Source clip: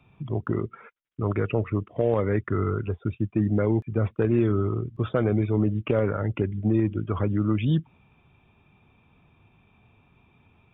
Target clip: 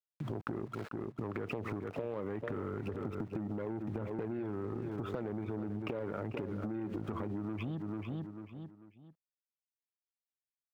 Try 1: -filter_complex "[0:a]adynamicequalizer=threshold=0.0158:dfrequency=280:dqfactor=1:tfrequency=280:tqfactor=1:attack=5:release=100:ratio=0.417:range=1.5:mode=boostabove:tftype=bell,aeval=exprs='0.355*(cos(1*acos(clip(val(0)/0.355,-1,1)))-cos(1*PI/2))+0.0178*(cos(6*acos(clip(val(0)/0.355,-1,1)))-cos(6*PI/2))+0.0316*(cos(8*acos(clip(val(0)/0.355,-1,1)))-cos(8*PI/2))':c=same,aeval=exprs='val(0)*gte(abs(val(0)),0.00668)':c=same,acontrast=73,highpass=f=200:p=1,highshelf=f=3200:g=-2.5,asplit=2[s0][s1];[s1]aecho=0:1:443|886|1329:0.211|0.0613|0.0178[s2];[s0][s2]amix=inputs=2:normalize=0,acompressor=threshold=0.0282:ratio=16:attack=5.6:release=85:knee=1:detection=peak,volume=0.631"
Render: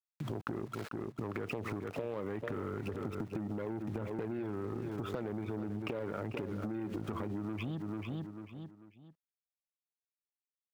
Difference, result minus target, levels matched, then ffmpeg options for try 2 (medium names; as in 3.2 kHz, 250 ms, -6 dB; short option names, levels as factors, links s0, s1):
8 kHz band +7.5 dB
-filter_complex "[0:a]adynamicequalizer=threshold=0.0158:dfrequency=280:dqfactor=1:tfrequency=280:tqfactor=1:attack=5:release=100:ratio=0.417:range=1.5:mode=boostabove:tftype=bell,aeval=exprs='0.355*(cos(1*acos(clip(val(0)/0.355,-1,1)))-cos(1*PI/2))+0.0178*(cos(6*acos(clip(val(0)/0.355,-1,1)))-cos(6*PI/2))+0.0316*(cos(8*acos(clip(val(0)/0.355,-1,1)))-cos(8*PI/2))':c=same,aeval=exprs='val(0)*gte(abs(val(0)),0.00668)':c=same,acontrast=73,highpass=f=200:p=1,highshelf=f=3200:g=-12,asplit=2[s0][s1];[s1]aecho=0:1:443|886|1329:0.211|0.0613|0.0178[s2];[s0][s2]amix=inputs=2:normalize=0,acompressor=threshold=0.0282:ratio=16:attack=5.6:release=85:knee=1:detection=peak,volume=0.631"